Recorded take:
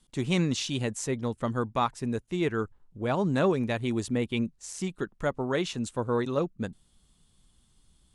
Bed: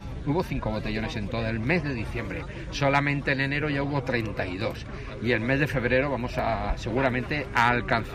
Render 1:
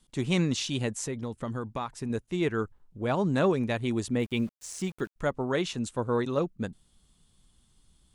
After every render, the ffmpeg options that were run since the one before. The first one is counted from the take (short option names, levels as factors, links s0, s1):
-filter_complex "[0:a]asettb=1/sr,asplit=3[s0][s1][s2];[s0]atrim=end=0.984[s3];[s1]atrim=start=0.98:end=2.1,asetpts=PTS-STARTPTS,afade=t=in:d=0.004:c=qsin,afade=t=out:st=1.116:d=0.004:c=qsin,acompressor=threshold=0.0398:ratio=6:attack=3.2:release=140:knee=1:detection=peak[s4];[s2]atrim=start=2.096[s5];[s3][s4]acrossfade=d=0.004:c1=hsin:c2=qsin[s6];[s6][s5]acrossfade=d=0.004:c1=qsin:c2=hsin,asettb=1/sr,asplit=3[s7][s8][s9];[s7]atrim=end=4.194[s10];[s8]atrim=start=4.19:end=5.16,asetpts=PTS-STARTPTS,afade=t=in:d=0.004:c=qsin,afade=t=out:st=0.966:d=0.004:c=qsin,aeval=exprs='val(0)*gte(abs(val(0)),0.00398)':c=same[s11];[s9]atrim=start=5.156[s12];[s10][s11]acrossfade=d=0.004:c1=hsin:c2=qsin[s13];[s13][s12]acrossfade=d=0.004:c1=qsin:c2=hsin"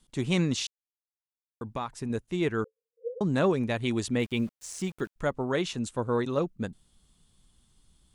-filter_complex "[0:a]asettb=1/sr,asplit=3[s0][s1][s2];[s0]atrim=end=2.644[s3];[s1]atrim=start=2.64:end=3.21,asetpts=PTS-STARTPTS,afade=t=in:d=0.004:c=qsin,afade=t=out:st=0.566:d=0.004:c=qsin,asuperpass=centerf=480:order=12:qfactor=5.6[s4];[s2]atrim=start=3.206[s5];[s3][s4]acrossfade=d=0.004:c1=hsin:c2=qsin[s6];[s6][s5]acrossfade=d=0.004:c1=qsin:c2=hsin,asettb=1/sr,asplit=3[s7][s8][s9];[s7]atrim=end=3.804[s10];[s8]atrim=start=3.8:end=4.32,asetpts=PTS-STARTPTS,afade=t=in:d=0.004:c=qsin,afade=t=out:st=0.516:d=0.004:c=qsin,equalizer=f=3200:w=0.47:g=5[s11];[s9]atrim=start=4.316[s12];[s10][s11]acrossfade=d=0.004:c1=hsin:c2=qsin[s13];[s13][s12]acrossfade=d=0.004:c1=qsin:c2=hsin,asplit=3[s14][s15][s16];[s14]atrim=end=0.67,asetpts=PTS-STARTPTS,afade=t=out:st=0.666:d=0.004:c=hsin[s17];[s15]atrim=start=0.67:end=1.61,asetpts=PTS-STARTPTS,volume=0[s18];[s16]atrim=start=1.61,asetpts=PTS-STARTPTS,afade=t=in:d=0.004:c=hsin[s19];[s17][s18][s19]concat=n=3:v=0:a=1"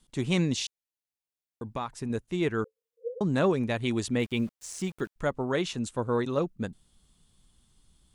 -filter_complex "[0:a]asettb=1/sr,asplit=3[s0][s1][s2];[s0]atrim=end=0.394[s3];[s1]atrim=start=0.39:end=1.65,asetpts=PTS-STARTPTS,afade=t=in:d=0.004:c=qsin,afade=t=out:st=1.256:d=0.004:c=qsin,equalizer=f=1300:t=o:w=0.32:g=-12.5[s4];[s2]atrim=start=1.646[s5];[s3][s4]acrossfade=d=0.004:c1=hsin:c2=qsin[s6];[s6][s5]acrossfade=d=0.004:c1=qsin:c2=hsin"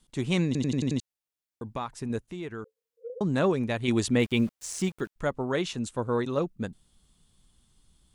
-filter_complex "[0:a]asettb=1/sr,asplit=3[s0][s1][s2];[s0]atrim=end=2.274[s3];[s1]atrim=start=2.27:end=3.1,asetpts=PTS-STARTPTS,afade=t=in:d=0.004:c=qsin,afade=t=out:st=0.826:d=0.004:c=qsin,acompressor=threshold=0.0141:ratio=2.5:attack=3.2:release=140:knee=1:detection=peak[s4];[s2]atrim=start=3.096[s5];[s3][s4]acrossfade=d=0.004:c1=hsin:c2=qsin[s6];[s6][s5]acrossfade=d=0.004:c1=qsin:c2=hsin,asplit=9[s7][s8][s9][s10][s11][s12][s13][s14][s15];[s7]atrim=end=0.552[s16];[s8]atrim=start=0.458:end=0.552[s17];[s9]atrim=start=0.458:end=0.552[s18];[s10]atrim=start=0.458:end=0.552[s19];[s11]atrim=start=0.458:end=0.552[s20];[s12]atrim=start=0.458:end=0.552[s21];[s13]atrim=start=0.998:end=3.882[s22];[s14]atrim=start=3.878:end=4.892,asetpts=PTS-STARTPTS,volume=1.58[s23];[s15]atrim=start=4.888[s24];[s16][s17]acrossfade=d=0.004:c1=hsin:c2=hsin[s25];[s25][s18]acrossfade=d=0.004:c1=hsin:c2=hsin[s26];[s26][s19]acrossfade=d=0.004:c1=hsin:c2=hsin[s27];[s27][s20]acrossfade=d=0.004:c1=hsin:c2=hsin[s28];[s28][s21]acrossfade=d=0.004:c1=hsin:c2=hsin[s29];[s29][s22]acrossfade=d=0.004:c1=hsin:c2=hsin[s30];[s30][s23]acrossfade=d=0.004:c1=hsin:c2=hsin[s31];[s31][s24]acrossfade=d=0.004:c1=hsin:c2=hsin"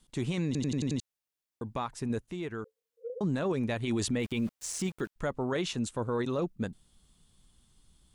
-af "alimiter=limit=0.075:level=0:latency=1:release=12"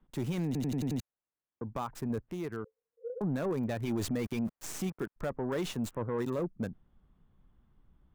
-filter_complex "[0:a]acrossover=split=140|2000[s0][s1][s2];[s2]acrusher=bits=5:dc=4:mix=0:aa=0.000001[s3];[s0][s1][s3]amix=inputs=3:normalize=0,asoftclip=type=tanh:threshold=0.0562"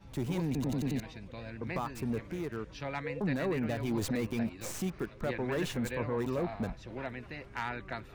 -filter_complex "[1:a]volume=0.168[s0];[0:a][s0]amix=inputs=2:normalize=0"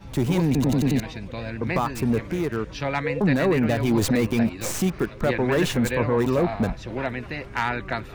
-af "volume=3.76"